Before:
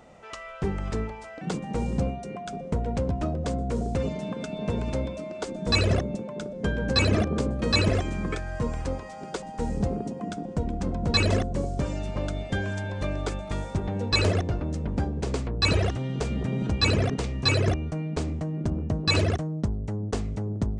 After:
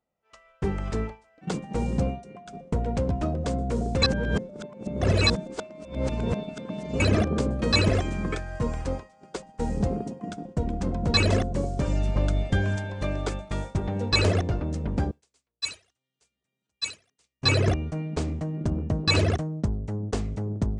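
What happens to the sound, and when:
4.02–7.00 s: reverse
11.87–12.76 s: bass shelf 110 Hz +9 dB
15.11–17.42 s: pre-emphasis filter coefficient 0.97
whole clip: expander -28 dBFS; trim +1 dB

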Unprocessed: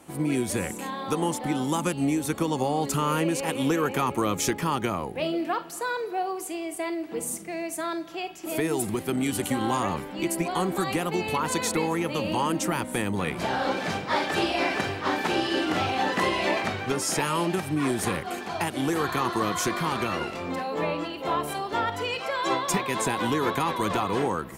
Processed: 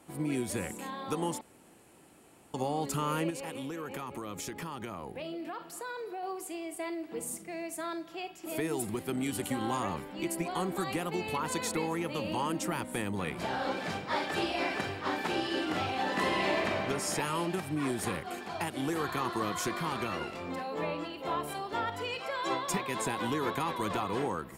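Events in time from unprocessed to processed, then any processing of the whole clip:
1.41–2.54 s: room tone
3.30–6.23 s: compression 5:1, threshold -29 dBFS
16.01–16.76 s: reverb throw, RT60 2.6 s, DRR 1.5 dB
whole clip: band-stop 6.1 kHz, Q 17; trim -6.5 dB

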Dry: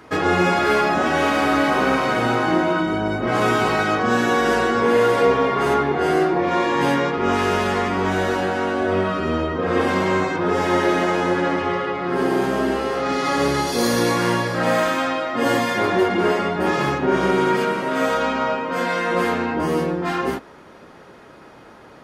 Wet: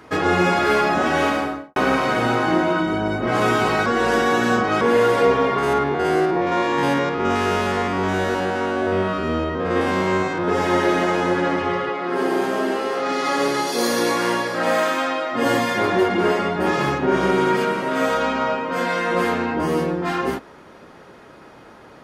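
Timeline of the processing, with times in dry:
1.22–1.76 s: studio fade out
3.86–4.81 s: reverse
5.58–10.48 s: spectrogram pixelated in time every 50 ms
11.89–15.32 s: high-pass 250 Hz

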